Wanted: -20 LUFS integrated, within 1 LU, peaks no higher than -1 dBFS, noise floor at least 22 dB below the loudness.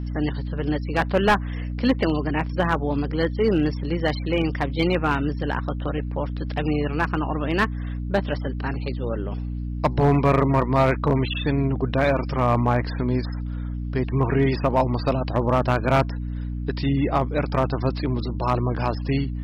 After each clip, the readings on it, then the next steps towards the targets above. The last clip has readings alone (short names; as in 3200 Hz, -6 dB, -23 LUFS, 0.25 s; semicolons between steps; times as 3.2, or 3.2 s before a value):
clipped 0.4%; flat tops at -11.5 dBFS; hum 60 Hz; harmonics up to 300 Hz; hum level -26 dBFS; loudness -23.5 LUFS; peak -11.5 dBFS; loudness target -20.0 LUFS
-> clip repair -11.5 dBFS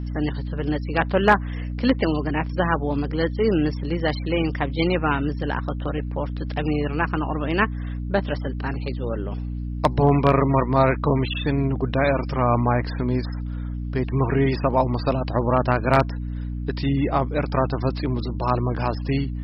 clipped 0.0%; hum 60 Hz; harmonics up to 300 Hz; hum level -26 dBFS
-> notches 60/120/180/240/300 Hz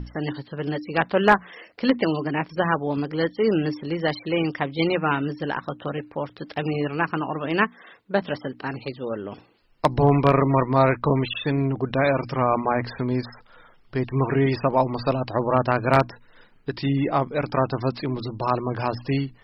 hum none; loudness -24.0 LUFS; peak -2.0 dBFS; loudness target -20.0 LUFS
-> gain +4 dB; limiter -1 dBFS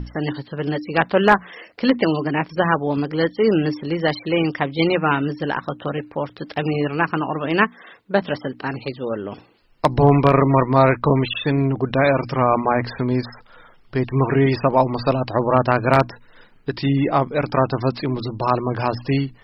loudness -20.0 LUFS; peak -1.0 dBFS; noise floor -51 dBFS